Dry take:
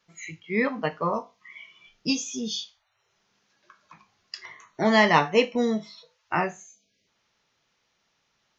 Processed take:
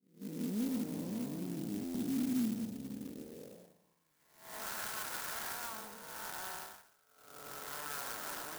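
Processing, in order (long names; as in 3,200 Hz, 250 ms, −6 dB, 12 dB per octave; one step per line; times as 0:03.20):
spectrum smeared in time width 611 ms
high-shelf EQ 4,000 Hz −9 dB
delay with pitch and tempo change per echo 445 ms, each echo −7 semitones, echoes 3, each echo −6 dB
wave folding −33 dBFS
dynamic equaliser 240 Hz, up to +4 dB, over −51 dBFS, Q 2.5
band-pass filter sweep 240 Hz → 1,400 Hz, 0:02.98–0:04.14
downward expander −47 dBFS
notch filter 1,200 Hz, Q 6.3
buffer that repeats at 0:01.84, samples 512, times 8
converter with an unsteady clock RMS 0.11 ms
level +4.5 dB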